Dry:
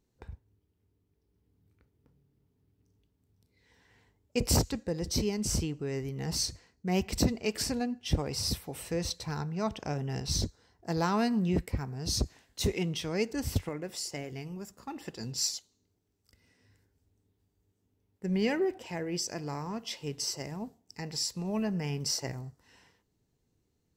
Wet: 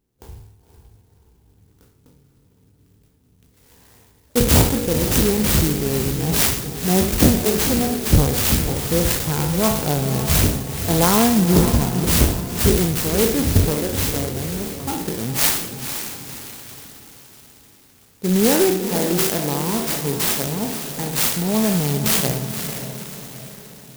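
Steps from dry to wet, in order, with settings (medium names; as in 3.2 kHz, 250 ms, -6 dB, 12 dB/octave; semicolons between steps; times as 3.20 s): spectral sustain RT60 0.64 s; level rider gain up to 10.5 dB; echo that smears into a reverb 508 ms, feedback 48%, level -8.5 dB; sampling jitter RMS 0.14 ms; trim +1.5 dB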